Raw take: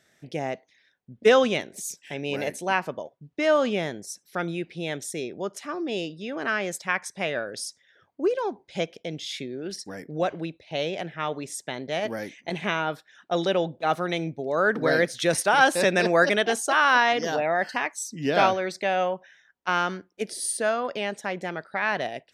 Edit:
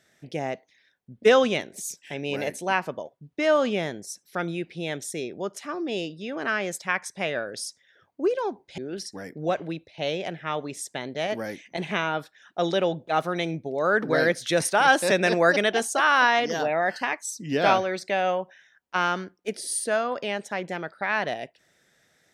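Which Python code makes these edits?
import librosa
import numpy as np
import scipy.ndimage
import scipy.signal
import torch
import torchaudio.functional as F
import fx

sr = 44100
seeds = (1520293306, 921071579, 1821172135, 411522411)

y = fx.edit(x, sr, fx.cut(start_s=8.78, length_s=0.73), tone=tone)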